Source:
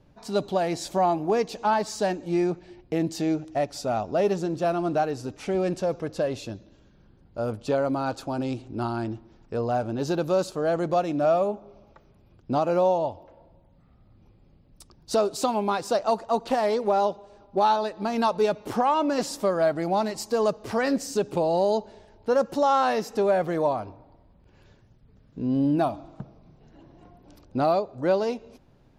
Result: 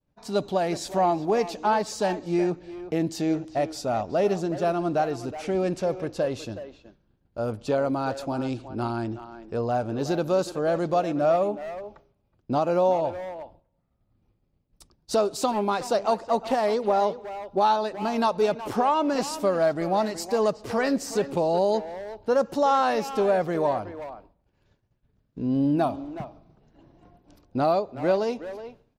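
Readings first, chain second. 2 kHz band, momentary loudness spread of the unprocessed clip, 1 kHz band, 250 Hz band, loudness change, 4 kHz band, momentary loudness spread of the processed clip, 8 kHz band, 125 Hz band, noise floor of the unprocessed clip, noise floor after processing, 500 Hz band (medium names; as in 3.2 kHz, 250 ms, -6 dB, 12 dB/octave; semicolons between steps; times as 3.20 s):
+0.5 dB, 9 LU, 0.0 dB, 0.0 dB, 0.0 dB, 0.0 dB, 12 LU, 0.0 dB, 0.0 dB, -58 dBFS, -71 dBFS, 0.0 dB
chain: speakerphone echo 370 ms, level -11 dB; expander -46 dBFS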